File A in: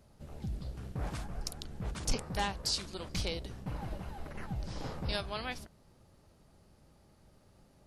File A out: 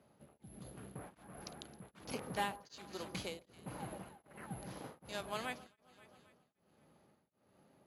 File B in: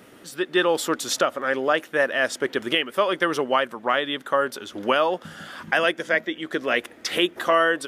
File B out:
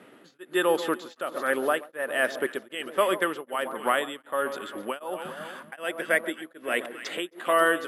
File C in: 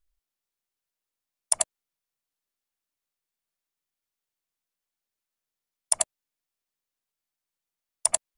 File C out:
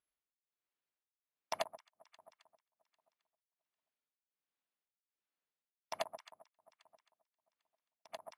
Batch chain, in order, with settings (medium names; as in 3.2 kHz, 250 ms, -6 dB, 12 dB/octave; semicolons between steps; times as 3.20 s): echo whose repeats swap between lows and highs 133 ms, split 1.2 kHz, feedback 71%, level -12 dB; careless resampling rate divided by 4×, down filtered, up zero stuff; band-pass 180–3300 Hz; tremolo of two beating tones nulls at 1.3 Hz; trim -1.5 dB